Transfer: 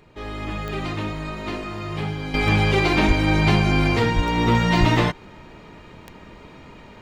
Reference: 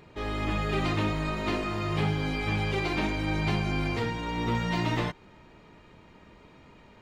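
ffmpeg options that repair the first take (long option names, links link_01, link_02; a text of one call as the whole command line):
ffmpeg -i in.wav -filter_complex "[0:a]adeclick=threshold=4,asplit=3[link_01][link_02][link_03];[link_01]afade=type=out:start_time=3.07:duration=0.02[link_04];[link_02]highpass=frequency=140:width=0.5412,highpass=frequency=140:width=1.3066,afade=type=in:start_time=3.07:duration=0.02,afade=type=out:start_time=3.19:duration=0.02[link_05];[link_03]afade=type=in:start_time=3.19:duration=0.02[link_06];[link_04][link_05][link_06]amix=inputs=3:normalize=0,asplit=3[link_07][link_08][link_09];[link_07]afade=type=out:start_time=4.15:duration=0.02[link_10];[link_08]highpass=frequency=140:width=0.5412,highpass=frequency=140:width=1.3066,afade=type=in:start_time=4.15:duration=0.02,afade=type=out:start_time=4.27:duration=0.02[link_11];[link_09]afade=type=in:start_time=4.27:duration=0.02[link_12];[link_10][link_11][link_12]amix=inputs=3:normalize=0,asplit=3[link_13][link_14][link_15];[link_13]afade=type=out:start_time=4.79:duration=0.02[link_16];[link_14]highpass=frequency=140:width=0.5412,highpass=frequency=140:width=1.3066,afade=type=in:start_time=4.79:duration=0.02,afade=type=out:start_time=4.91:duration=0.02[link_17];[link_15]afade=type=in:start_time=4.91:duration=0.02[link_18];[link_16][link_17][link_18]amix=inputs=3:normalize=0,agate=range=-21dB:threshold=-36dB,asetnsamples=nb_out_samples=441:pad=0,asendcmd='2.34 volume volume -10dB',volume=0dB" out.wav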